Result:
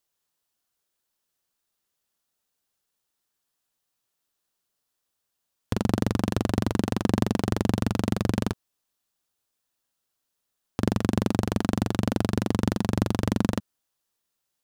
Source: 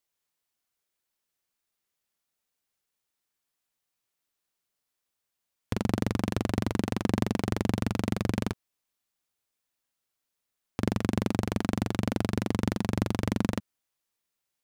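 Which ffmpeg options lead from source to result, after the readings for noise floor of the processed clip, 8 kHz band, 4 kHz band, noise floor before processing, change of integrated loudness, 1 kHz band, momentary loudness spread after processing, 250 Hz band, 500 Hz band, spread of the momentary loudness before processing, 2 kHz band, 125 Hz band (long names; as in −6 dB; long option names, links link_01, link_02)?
−81 dBFS, +3.5 dB, +3.0 dB, −84 dBFS, +3.5 dB, +3.5 dB, 4 LU, +3.5 dB, +3.5 dB, 4 LU, +1.5 dB, +3.5 dB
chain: -af "equalizer=frequency=2200:width_type=o:width=0.41:gain=-5.5,volume=3.5dB"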